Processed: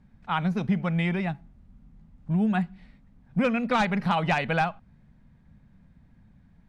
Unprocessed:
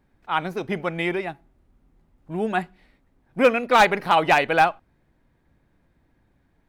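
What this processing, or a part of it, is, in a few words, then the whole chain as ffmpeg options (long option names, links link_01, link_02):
jukebox: -af "lowpass=7700,lowshelf=frequency=260:width_type=q:width=3:gain=7.5,acompressor=threshold=-23dB:ratio=3"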